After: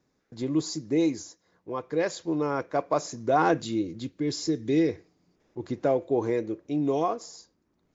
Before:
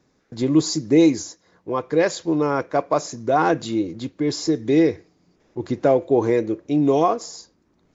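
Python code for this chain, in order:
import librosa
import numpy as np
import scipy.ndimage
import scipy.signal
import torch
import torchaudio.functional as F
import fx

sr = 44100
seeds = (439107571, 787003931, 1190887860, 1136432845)

y = fx.peak_eq(x, sr, hz=870.0, db=-7.5, octaves=1.7, at=(3.6, 4.89))
y = fx.rider(y, sr, range_db=10, speed_s=2.0)
y = F.gain(torch.from_numpy(y), -6.5).numpy()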